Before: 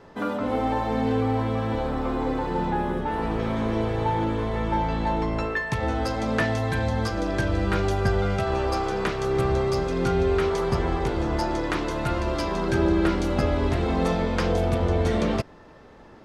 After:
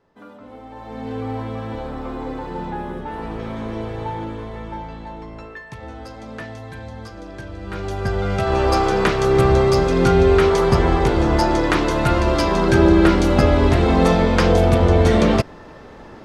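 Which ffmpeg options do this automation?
-af "volume=5.96,afade=t=in:st=0.7:d=0.61:silence=0.251189,afade=t=out:st=4.02:d=1.06:silence=0.446684,afade=t=in:st=7.6:d=0.65:silence=0.266073,afade=t=in:st=8.25:d=0.49:silence=0.473151"

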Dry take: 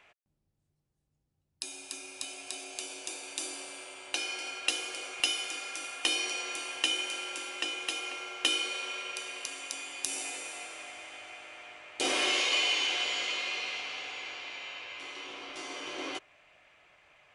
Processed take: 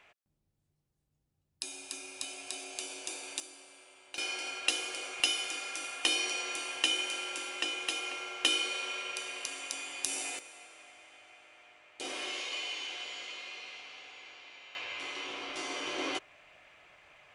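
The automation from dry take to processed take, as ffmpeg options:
-af "asetnsamples=n=441:p=0,asendcmd='3.4 volume volume -11.5dB;4.18 volume volume 0dB;10.39 volume volume -10dB;14.75 volume volume 3dB',volume=0.944"

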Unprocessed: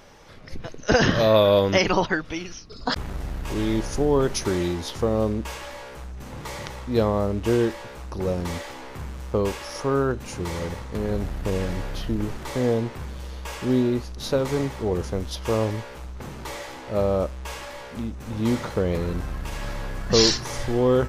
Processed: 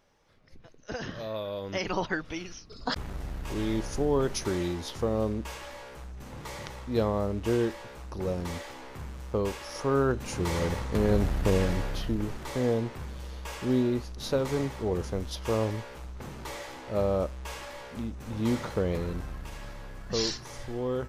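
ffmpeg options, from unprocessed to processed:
-af "volume=1.26,afade=t=in:st=1.59:d=0.64:silence=0.237137,afade=t=in:st=9.65:d=1.2:silence=0.421697,afade=t=out:st=11.4:d=0.81:silence=0.473151,afade=t=out:st=18.83:d=0.91:silence=0.446684"

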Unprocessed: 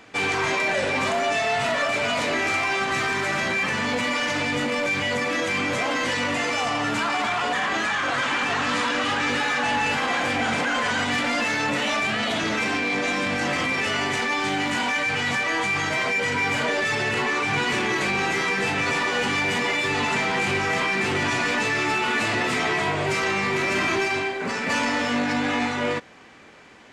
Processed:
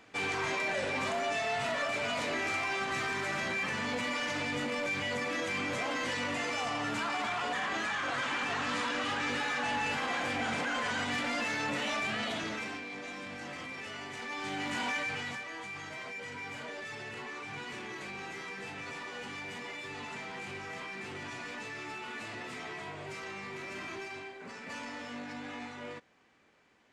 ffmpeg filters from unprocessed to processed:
-af "volume=0.944,afade=t=out:st=12.2:d=0.66:silence=0.375837,afade=t=in:st=14.13:d=0.77:silence=0.354813,afade=t=out:st=14.9:d=0.56:silence=0.334965"

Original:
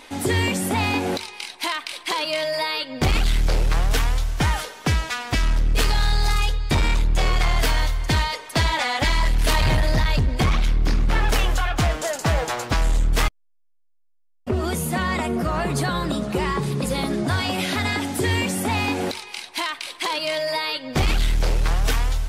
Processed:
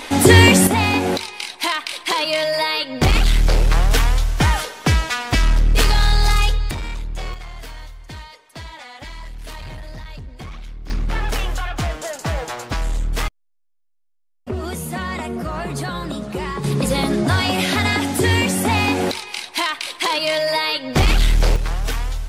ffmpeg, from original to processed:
-af "asetnsamples=n=441:p=0,asendcmd='0.67 volume volume 4.5dB;6.71 volume volume -8dB;7.34 volume volume -15dB;10.9 volume volume -2.5dB;16.64 volume volume 5dB;21.56 volume volume -2dB',volume=3.98"

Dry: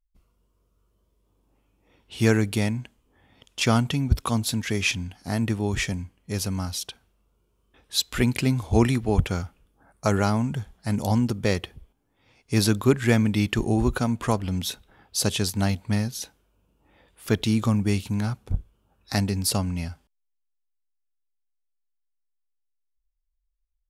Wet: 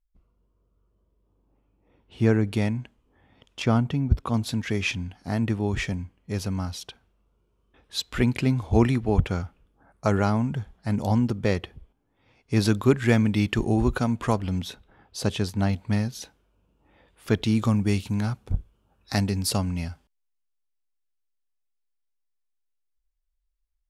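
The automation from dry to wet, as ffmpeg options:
-af "asetnsamples=n=441:p=0,asendcmd='2.47 lowpass f 2400;3.62 lowpass f 1000;4.34 lowpass f 2700;12.65 lowpass f 5000;14.61 lowpass f 2000;15.73 lowpass f 3900;17.55 lowpass f 7800',lowpass=f=1000:p=1"

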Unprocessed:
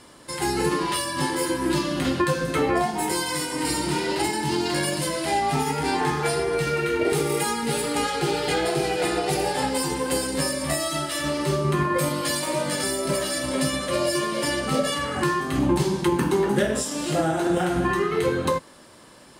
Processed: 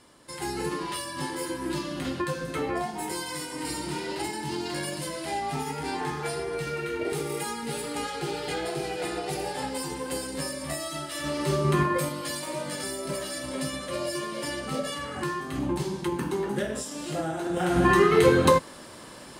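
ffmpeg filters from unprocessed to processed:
-af "volume=3.98,afade=t=in:st=11.1:d=0.68:silence=0.421697,afade=t=out:st=11.78:d=0.34:silence=0.421697,afade=t=in:st=17.53:d=0.43:silence=0.251189"

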